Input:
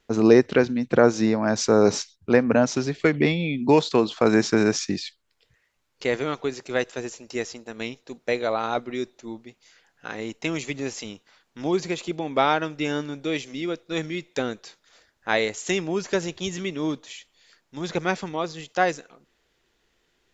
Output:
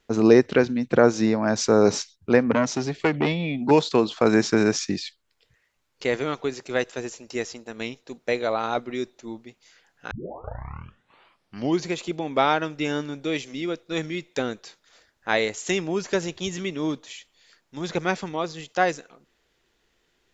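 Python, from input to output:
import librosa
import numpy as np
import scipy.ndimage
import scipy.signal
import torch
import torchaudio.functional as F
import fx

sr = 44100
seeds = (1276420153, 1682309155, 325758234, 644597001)

y = fx.transformer_sat(x, sr, knee_hz=850.0, at=(2.51, 3.71))
y = fx.edit(y, sr, fx.tape_start(start_s=10.11, length_s=1.76), tone=tone)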